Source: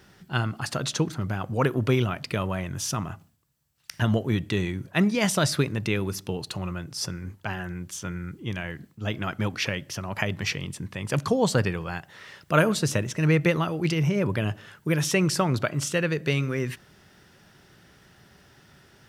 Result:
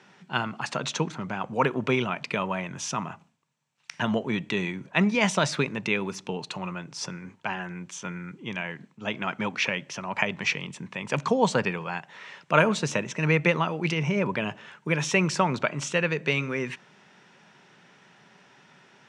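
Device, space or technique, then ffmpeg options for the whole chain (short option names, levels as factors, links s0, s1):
television speaker: -af "highpass=f=160:w=0.5412,highpass=f=160:w=1.3066,equalizer=f=320:t=q:w=4:g=-5,equalizer=f=940:t=q:w=4:g=7,equalizer=f=2400:t=q:w=4:g=6,equalizer=f=4800:t=q:w=4:g=-6,lowpass=f=7200:w=0.5412,lowpass=f=7200:w=1.3066"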